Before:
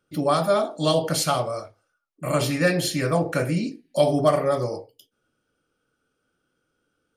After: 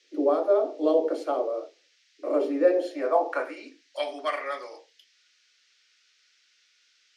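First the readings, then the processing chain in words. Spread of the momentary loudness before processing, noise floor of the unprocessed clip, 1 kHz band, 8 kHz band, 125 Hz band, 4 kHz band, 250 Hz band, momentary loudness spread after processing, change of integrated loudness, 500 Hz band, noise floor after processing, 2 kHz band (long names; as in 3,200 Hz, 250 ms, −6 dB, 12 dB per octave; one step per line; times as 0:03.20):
9 LU, −76 dBFS, −4.5 dB, below −20 dB, below −40 dB, −14.0 dB, −5.0 dB, 14 LU, −3.5 dB, −1.5 dB, −66 dBFS, −7.5 dB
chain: band-pass filter sweep 410 Hz → 2,100 Hz, 0:02.58–0:04.11
Butterworth high-pass 260 Hz 96 dB per octave
noise in a band 1,700–6,000 Hz −71 dBFS
level +5.5 dB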